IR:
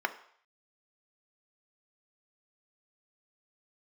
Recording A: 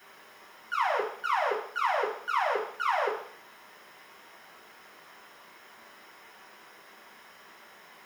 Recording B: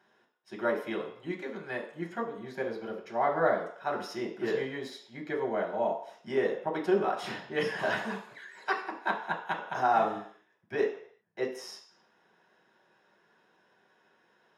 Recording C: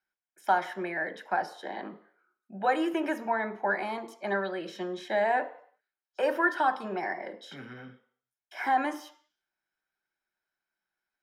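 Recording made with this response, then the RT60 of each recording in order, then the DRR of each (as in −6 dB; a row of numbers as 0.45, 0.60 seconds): C; 0.60, 0.60, 0.60 seconds; −6.0, −1.5, 8.5 decibels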